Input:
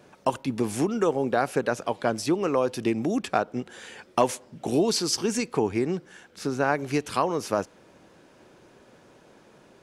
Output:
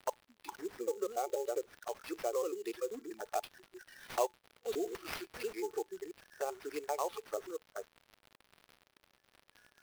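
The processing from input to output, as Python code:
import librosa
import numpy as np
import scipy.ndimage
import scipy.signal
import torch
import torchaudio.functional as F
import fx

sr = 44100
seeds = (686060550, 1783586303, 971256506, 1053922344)

y = fx.block_reorder(x, sr, ms=97.0, group=3)
y = fx.recorder_agc(y, sr, target_db=-16.0, rise_db_per_s=5.8, max_gain_db=30)
y = scipy.signal.sosfilt(scipy.signal.butter(4, 410.0, 'highpass', fs=sr, output='sos'), y)
y = fx.noise_reduce_blind(y, sr, reduce_db=29)
y = scipy.signal.sosfilt(scipy.signal.butter(16, 9300.0, 'lowpass', fs=sr, output='sos'), y)
y = fx.high_shelf(y, sr, hz=2800.0, db=-7.0)
y = fx.env_flanger(y, sr, rest_ms=5.3, full_db=-27.5)
y = fx.comb_fb(y, sr, f0_hz=860.0, decay_s=0.17, harmonics='all', damping=0.0, mix_pct=50)
y = fx.dmg_crackle(y, sr, seeds[0], per_s=240.0, level_db=-47.0)
y = fx.sample_hold(y, sr, seeds[1], rate_hz=7300.0, jitter_pct=20)
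y = y * librosa.db_to_amplitude(-1.0)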